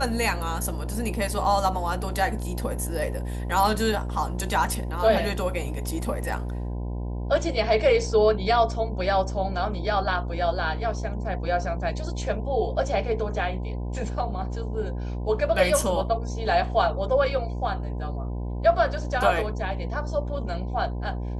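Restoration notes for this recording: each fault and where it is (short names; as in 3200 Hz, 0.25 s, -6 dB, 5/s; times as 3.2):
buzz 60 Hz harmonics 17 -30 dBFS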